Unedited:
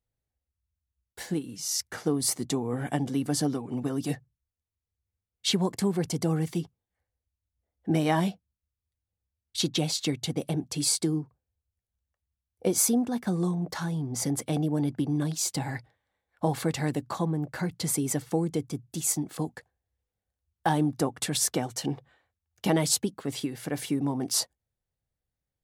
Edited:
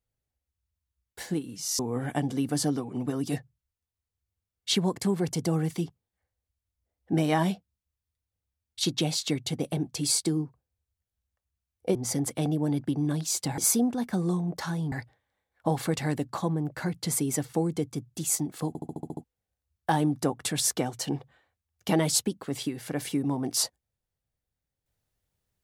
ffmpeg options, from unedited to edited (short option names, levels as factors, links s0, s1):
-filter_complex "[0:a]asplit=13[s0][s1][s2][s3][s4][s5][s6][s7][s8][s9][s10][s11][s12];[s0]atrim=end=1.792[s13];[s1]atrim=start=2.558:end=12.722[s14];[s2]atrim=start=14.058:end=15.692[s15];[s3]atrim=start=12.718:end=14.062[s16];[s4]atrim=start=15.688:end=19.522[s17];[s5]atrim=start=19.448:end=19.522[s18];[s6]atrim=start=19.448:end=19.522[s19];[s7]atrim=start=19.448:end=19.522[s20];[s8]atrim=start=19.448:end=19.522[s21];[s9]atrim=start=19.448:end=19.522[s22];[s10]atrim=start=19.448:end=19.522[s23];[s11]atrim=start=19.448:end=19.522[s24];[s12]atrim=start=20.008[s25];[s13][s14]acrossfade=d=0.004:c1=hsin:c2=hsin[s26];[s26][s15]acrossfade=d=0.004:c1=hsin:c2=hsin[s27];[s27][s16]acrossfade=d=0.004:c1=hsin:c2=hsin[s28];[s28][s17]acrossfade=d=0.004:c1=hsin:c2=hsin[s29];[s29][s18]acrossfade=d=0.004:c1=hsin:c2=hsin[s30];[s30][s19]acrossfade=d=0.004:c1=hsin:c2=hsin[s31];[s31][s20]acrossfade=d=0.004:c1=hsin:c2=hsin[s32];[s32][s21]acrossfade=d=0.004:c1=hsin:c2=hsin[s33];[s33][s22]acrossfade=d=0.004:c1=hsin:c2=hsin[s34];[s34][s23]acrossfade=d=0.004:c1=hsin:c2=hsin[s35];[s35][s24]acrossfade=d=0.004:c1=hsin:c2=hsin[s36];[s36][s25]acrossfade=d=0.004:c1=hsin:c2=hsin"